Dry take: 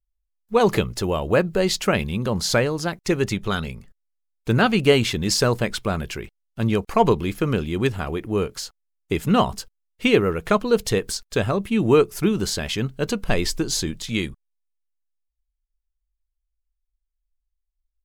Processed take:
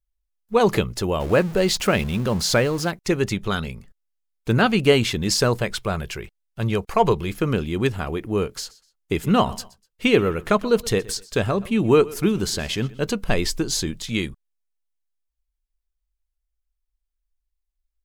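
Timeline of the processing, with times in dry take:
1.20–2.91 s: jump at every zero crossing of -31.5 dBFS
5.59–7.31 s: peaking EQ 260 Hz -12.5 dB 0.35 oct
8.46–13.01 s: feedback delay 124 ms, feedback 30%, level -20.5 dB

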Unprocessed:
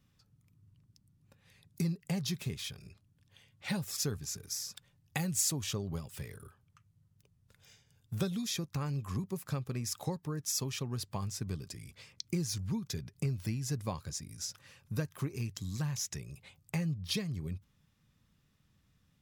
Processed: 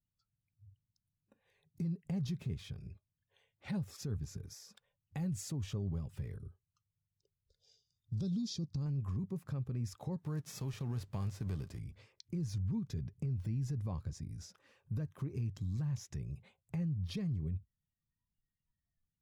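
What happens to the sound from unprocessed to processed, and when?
6.38–8.86 s: FFT filter 250 Hz 0 dB, 2.2 kHz -15 dB, 4.7 kHz +12 dB, 16 kHz -17 dB
10.17–11.78 s: formants flattened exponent 0.6
whole clip: spectral noise reduction 25 dB; tilt EQ -3.5 dB/octave; peak limiter -24.5 dBFS; trim -6 dB

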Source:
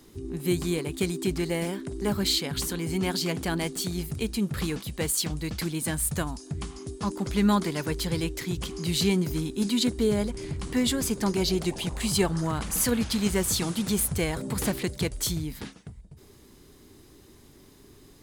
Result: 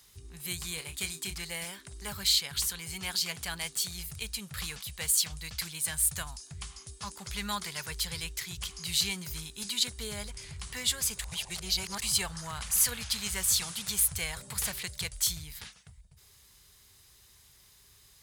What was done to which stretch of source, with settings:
0.74–1.36 s: doubling 31 ms -8.5 dB
11.19–12.02 s: reverse
whole clip: high-pass 47 Hz; amplifier tone stack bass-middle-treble 10-0-10; trim +2 dB

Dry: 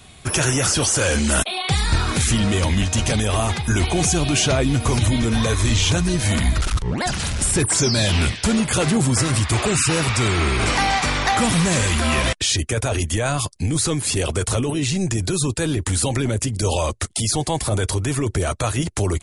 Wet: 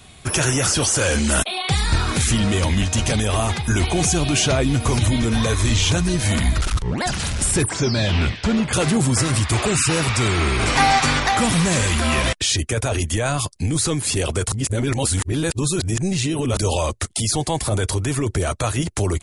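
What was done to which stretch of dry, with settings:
7.69–8.73 s: distance through air 130 m
10.75–11.20 s: comb 7.5 ms, depth 97%
14.52–16.57 s: reverse

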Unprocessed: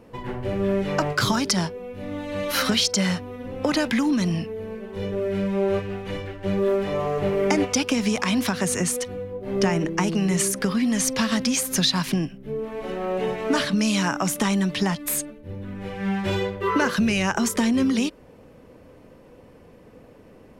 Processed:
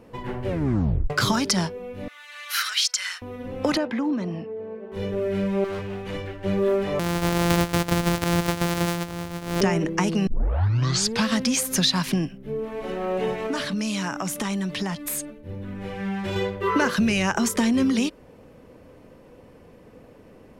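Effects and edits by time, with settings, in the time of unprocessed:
0.47 s: tape stop 0.63 s
2.08–3.22 s: Chebyshev high-pass 1.4 kHz, order 3
3.77–4.92 s: band-pass filter 540 Hz, Q 0.74
5.64–6.14 s: hard clipper -28 dBFS
6.99–9.61 s: sorted samples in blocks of 256 samples
10.27 s: tape start 0.99 s
13.46–16.36 s: compression 2:1, threshold -27 dBFS

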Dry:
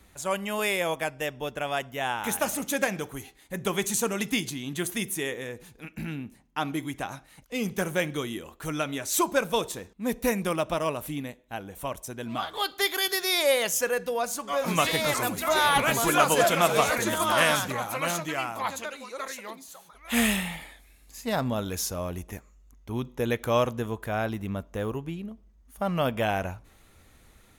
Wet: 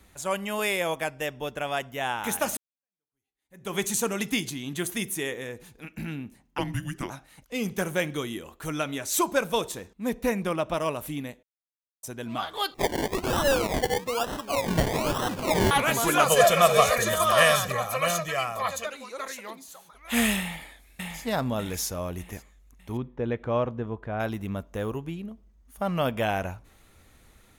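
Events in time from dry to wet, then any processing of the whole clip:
2.57–3.76 s: fade in exponential
6.58–7.10 s: frequency shift -440 Hz
10.09–10.74 s: treble shelf 4.9 kHz -8.5 dB
11.43–12.03 s: mute
12.74–15.71 s: decimation with a swept rate 27×, swing 60% 1.1 Hz
16.26–18.87 s: comb 1.7 ms, depth 83%
20.39–21.22 s: echo throw 600 ms, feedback 40%, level -3 dB
22.97–24.20 s: tape spacing loss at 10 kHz 36 dB

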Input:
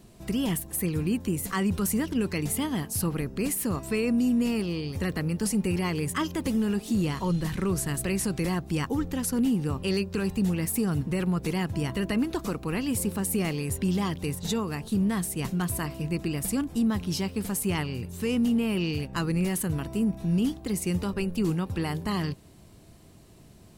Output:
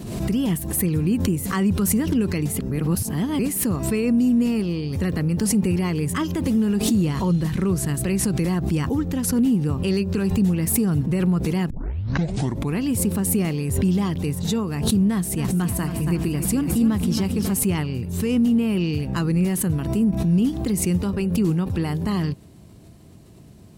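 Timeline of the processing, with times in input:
2.59–3.39 s: reverse
11.70 s: tape start 1.07 s
15.10–17.59 s: bit-crushed delay 274 ms, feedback 55%, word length 10-bit, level -9.5 dB
whole clip: high-pass 110 Hz 6 dB/octave; bass shelf 310 Hz +10.5 dB; swell ahead of each attack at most 48 dB/s

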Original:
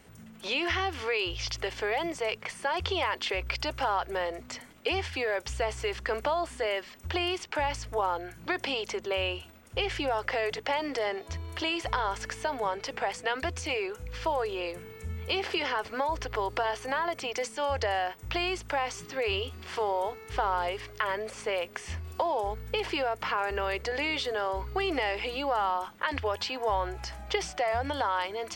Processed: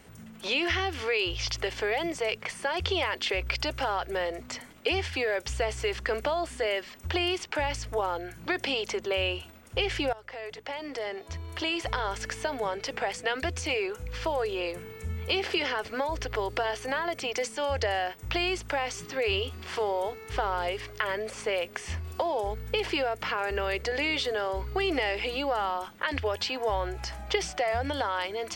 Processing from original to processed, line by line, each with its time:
10.13–12.08 s: fade in, from -18 dB
whole clip: dynamic bell 1 kHz, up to -6 dB, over -42 dBFS, Q 1.7; trim +2.5 dB

